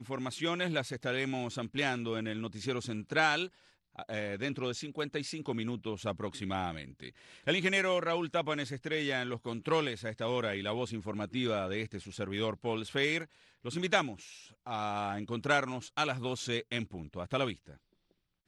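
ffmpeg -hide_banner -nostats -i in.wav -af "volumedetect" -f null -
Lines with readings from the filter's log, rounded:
mean_volume: -34.9 dB
max_volume: -11.7 dB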